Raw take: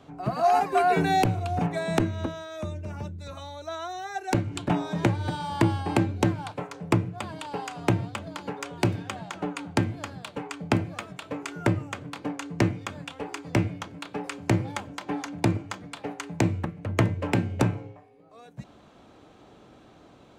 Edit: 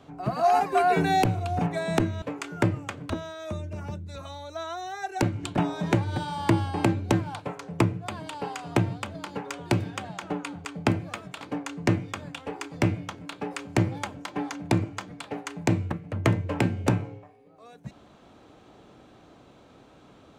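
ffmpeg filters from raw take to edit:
ffmpeg -i in.wav -filter_complex "[0:a]asplit=5[link_01][link_02][link_03][link_04][link_05];[link_01]atrim=end=2.222[link_06];[link_02]atrim=start=11.258:end=12.142[link_07];[link_03]atrim=start=2.218:end=9.772[link_08];[link_04]atrim=start=10.498:end=11.262[link_09];[link_05]atrim=start=12.138[link_10];[link_06][link_07]acrossfade=duration=0.004:curve1=hsin:curve2=hsin[link_11];[link_11][link_08]acrossfade=duration=0.004:curve1=hsin:curve2=hsin[link_12];[link_12][link_09]acrossfade=duration=0.004:curve1=hsin:curve2=hsin[link_13];[link_13][link_10]acrossfade=duration=0.004:curve1=hsin:curve2=hsin" out.wav

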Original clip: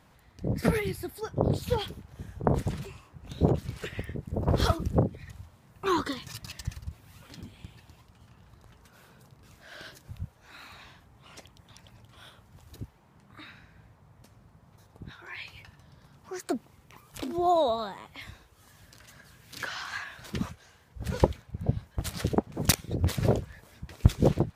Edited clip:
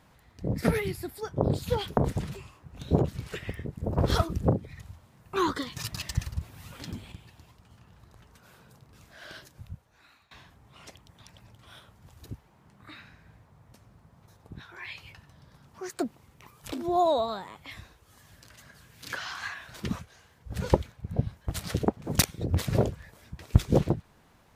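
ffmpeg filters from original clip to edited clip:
ffmpeg -i in.wav -filter_complex "[0:a]asplit=5[link_01][link_02][link_03][link_04][link_05];[link_01]atrim=end=1.972[link_06];[link_02]atrim=start=2.468:end=6.262[link_07];[link_03]atrim=start=6.258:end=7.622,asetpts=PTS-STARTPTS,volume=6dB[link_08];[link_04]atrim=start=7.618:end=10.81,asetpts=PTS-STARTPTS,afade=type=out:start_time=2.202:duration=0.99:silence=0.0749894[link_09];[link_05]atrim=start=10.81,asetpts=PTS-STARTPTS,afade=type=in:duration=0.004:curve=hsin:silence=0.0749894[link_10];[link_06][link_07]acrossfade=duration=0.004:curve1=hsin:curve2=hsin[link_11];[link_11][link_08]acrossfade=duration=0.004:curve1=hsin:curve2=hsin[link_12];[link_09][link_10]concat=n=2:v=0:a=1[link_13];[link_12][link_13]acrossfade=duration=0.004:curve1=hsin:curve2=hsin" out.wav

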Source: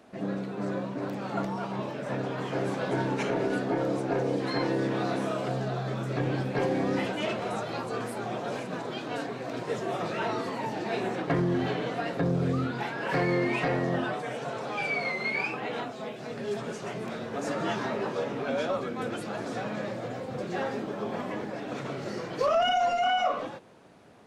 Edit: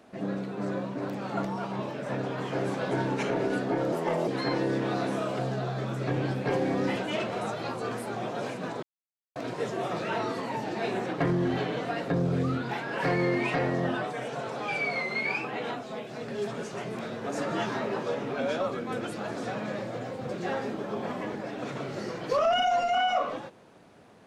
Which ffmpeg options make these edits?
ffmpeg -i in.wav -filter_complex "[0:a]asplit=5[link_01][link_02][link_03][link_04][link_05];[link_01]atrim=end=3.924[link_06];[link_02]atrim=start=3.92:end=4.37,asetpts=PTS-STARTPTS,asetrate=55566,aresample=44100[link_07];[link_03]atrim=start=4.366:end=8.92,asetpts=PTS-STARTPTS,afade=type=out:start_time=4.55:duration=0.004:curve=hsin[link_08];[link_04]atrim=start=8.92:end=9.45,asetpts=PTS-STARTPTS,volume=0[link_09];[link_05]atrim=start=9.45,asetpts=PTS-STARTPTS,afade=type=in:duration=0.004:curve=hsin[link_10];[link_06][link_07]acrossfade=duration=0.004:curve1=hsin:curve2=hsin[link_11];[link_08][link_09][link_10]concat=n=3:v=0:a=1[link_12];[link_11][link_12]acrossfade=duration=0.004:curve1=hsin:curve2=hsin" out.wav

